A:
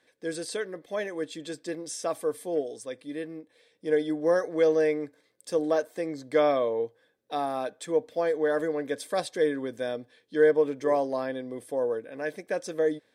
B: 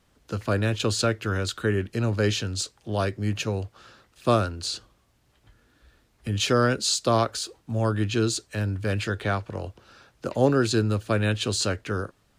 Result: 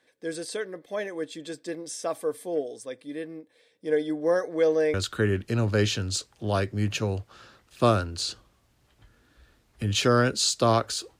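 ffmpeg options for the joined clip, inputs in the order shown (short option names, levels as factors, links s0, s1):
-filter_complex "[0:a]apad=whole_dur=11.19,atrim=end=11.19,atrim=end=4.942[s0];[1:a]atrim=start=1.388:end=7.64[s1];[s0][s1]acrossfade=d=0.004:c1=hsin:c2=hsin"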